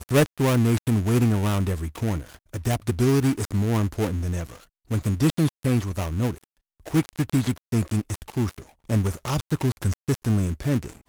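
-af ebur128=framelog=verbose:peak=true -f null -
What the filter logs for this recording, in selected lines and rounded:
Integrated loudness:
  I:         -24.6 LUFS
  Threshold: -34.9 LUFS
Loudness range:
  LRA:         3.2 LU
  Threshold: -45.4 LUFS
  LRA low:   -26.7 LUFS
  LRA high:  -23.5 LUFS
True peak:
  Peak:       -5.7 dBFS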